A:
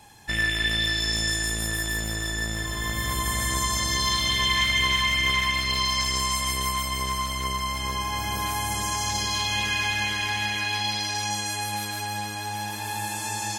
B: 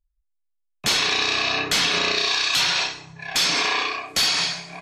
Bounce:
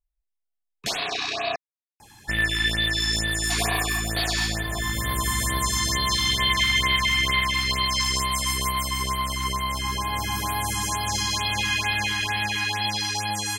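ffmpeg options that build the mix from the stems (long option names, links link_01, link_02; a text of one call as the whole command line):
ffmpeg -i stem1.wav -i stem2.wav -filter_complex "[0:a]adelay=2000,volume=-3.5dB[link_01];[1:a]equalizer=frequency=690:width=5.4:gain=14,volume=-12dB,asplit=3[link_02][link_03][link_04];[link_02]atrim=end=1.56,asetpts=PTS-STARTPTS,afade=type=out:start_time=1.556:duration=0.004:curve=hsin[link_05];[link_03]atrim=start=1.56:end=3.5,asetpts=PTS-STARTPTS,volume=0[link_06];[link_04]atrim=start=3.5,asetpts=PTS-STARTPTS,afade=type=in:duration=0.004:curve=hsin[link_07];[link_05][link_06][link_07]concat=n=3:v=0:a=1[link_08];[link_01][link_08]amix=inputs=2:normalize=0,acontrast=35,afftfilt=real='re*(1-between(b*sr/1024,480*pow(7200/480,0.5+0.5*sin(2*PI*2.2*pts/sr))/1.41,480*pow(7200/480,0.5+0.5*sin(2*PI*2.2*pts/sr))*1.41))':imag='im*(1-between(b*sr/1024,480*pow(7200/480,0.5+0.5*sin(2*PI*2.2*pts/sr))/1.41,480*pow(7200/480,0.5+0.5*sin(2*PI*2.2*pts/sr))*1.41))':win_size=1024:overlap=0.75" out.wav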